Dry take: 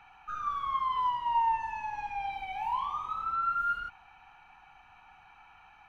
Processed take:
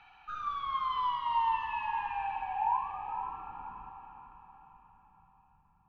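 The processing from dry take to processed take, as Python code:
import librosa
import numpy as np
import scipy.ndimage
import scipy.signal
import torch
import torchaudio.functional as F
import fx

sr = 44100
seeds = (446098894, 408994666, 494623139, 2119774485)

y = fx.filter_sweep_lowpass(x, sr, from_hz=4100.0, to_hz=180.0, start_s=1.4, end_s=4.05, q=2.2)
y = fx.echo_diffused(y, sr, ms=487, feedback_pct=47, wet_db=-7.0)
y = y * librosa.db_to_amplitude(-3.0)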